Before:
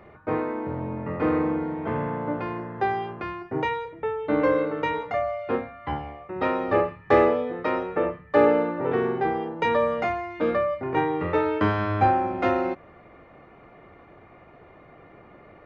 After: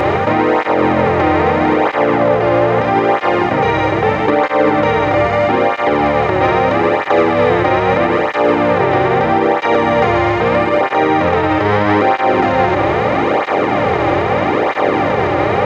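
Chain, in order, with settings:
compressor on every frequency bin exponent 0.2
high-shelf EQ 3,700 Hz +6.5 dB
amplitude modulation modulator 98 Hz, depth 15%
0:02.16–0:02.78: parametric band 560 Hz +5.5 dB
boost into a limiter +9 dB
through-zero flanger with one copy inverted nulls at 0.78 Hz, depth 4.7 ms

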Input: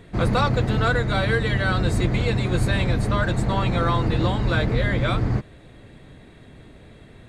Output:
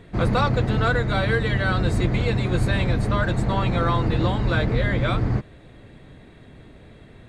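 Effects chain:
high-shelf EQ 5,900 Hz −6 dB

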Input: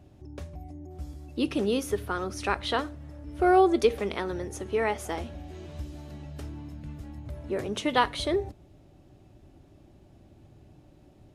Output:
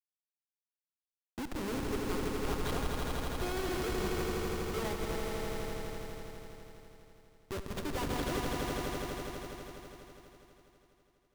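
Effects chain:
reverb reduction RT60 0.97 s
reverb whose tail is shaped and stops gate 180 ms rising, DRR 9.5 dB
noise reduction from a noise print of the clip's start 15 dB
comparator with hysteresis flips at −27.5 dBFS
on a send: echo that builds up and dies away 82 ms, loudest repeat 5, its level −5.5 dB
on the sum: level −5.5 dB

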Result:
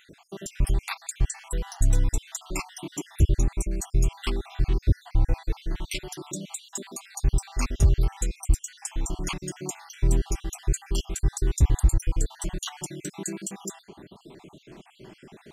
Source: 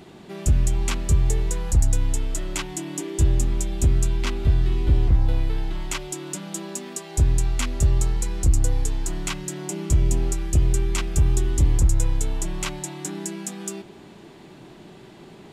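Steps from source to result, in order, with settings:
time-frequency cells dropped at random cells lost 56%

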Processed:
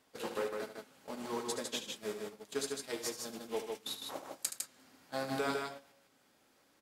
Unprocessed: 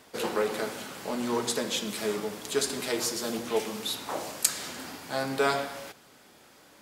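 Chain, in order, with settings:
downward compressor 2.5 to 1, threshold −50 dBFS, peak gain reduction 21 dB
tuned comb filter 270 Hz, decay 0.15 s, harmonics all, mix 50%
noise gate −48 dBFS, range −23 dB
loudspeakers that aren't time-aligned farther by 25 metres −10 dB, 53 metres −4 dB
level +12.5 dB

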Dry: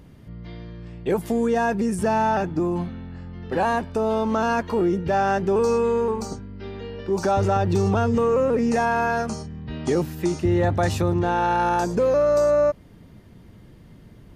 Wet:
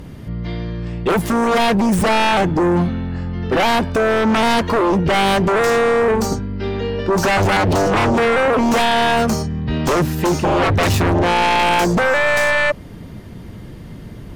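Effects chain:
stylus tracing distortion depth 0.067 ms
sine wavefolder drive 10 dB, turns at −11 dBFS
level −1 dB

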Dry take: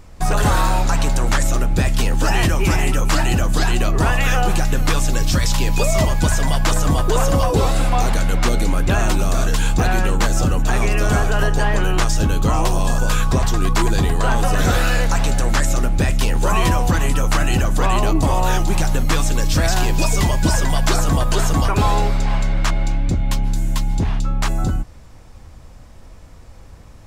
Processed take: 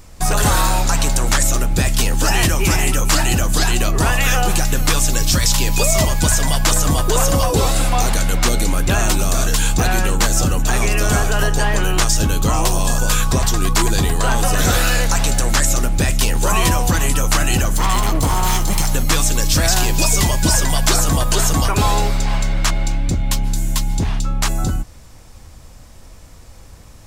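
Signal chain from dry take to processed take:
0:17.73–0:18.90: lower of the sound and its delayed copy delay 0.95 ms
high-shelf EQ 3,900 Hz +10.5 dB

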